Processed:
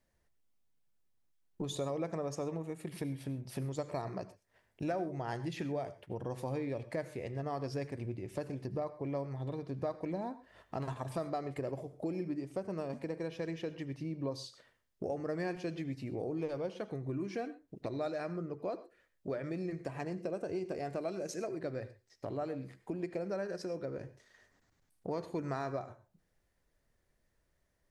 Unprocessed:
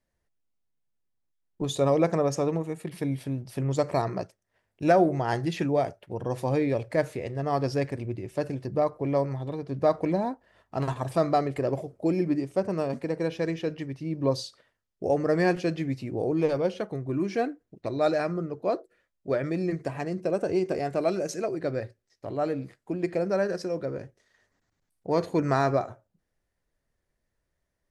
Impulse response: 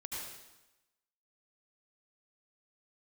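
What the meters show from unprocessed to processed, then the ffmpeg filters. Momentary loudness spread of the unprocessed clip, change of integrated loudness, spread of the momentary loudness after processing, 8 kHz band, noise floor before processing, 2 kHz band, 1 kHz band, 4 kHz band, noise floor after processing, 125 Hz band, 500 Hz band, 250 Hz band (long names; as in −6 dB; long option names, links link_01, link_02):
10 LU, −11.0 dB, 6 LU, −8.5 dB, −80 dBFS, −11.5 dB, −12.5 dB, −9.5 dB, −78 dBFS, −9.5 dB, −11.5 dB, −10.5 dB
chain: -filter_complex "[0:a]acompressor=threshold=-42dB:ratio=3,asplit=2[link_01][link_02];[1:a]atrim=start_sample=2205,atrim=end_sample=6174[link_03];[link_02][link_03]afir=irnorm=-1:irlink=0,volume=-10dB[link_04];[link_01][link_04]amix=inputs=2:normalize=0,volume=1dB"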